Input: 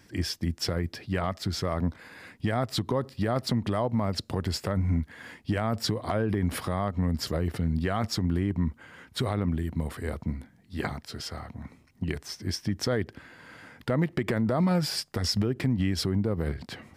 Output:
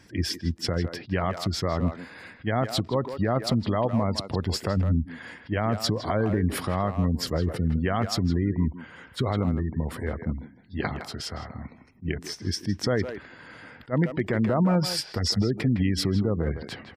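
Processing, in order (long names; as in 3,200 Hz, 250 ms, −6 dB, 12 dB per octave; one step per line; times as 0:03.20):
gate on every frequency bin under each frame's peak −30 dB strong
far-end echo of a speakerphone 160 ms, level −8 dB
level that may rise only so fast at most 420 dB per second
level +2.5 dB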